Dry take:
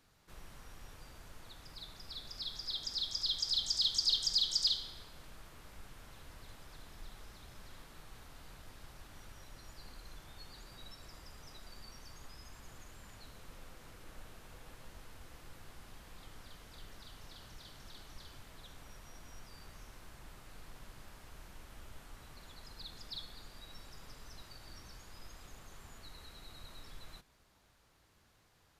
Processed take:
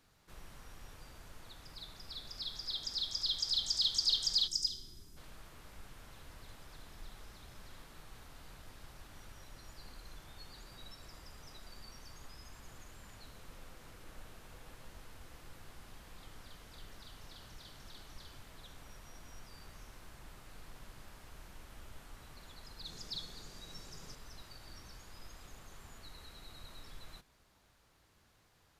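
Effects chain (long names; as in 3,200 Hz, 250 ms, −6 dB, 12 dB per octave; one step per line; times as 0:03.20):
0:04.48–0:05.17: gain on a spectral selection 430–4,800 Hz −14 dB
0:22.85–0:24.15: graphic EQ with 15 bands 160 Hz +7 dB, 400 Hz +5 dB, 6,300 Hz +9 dB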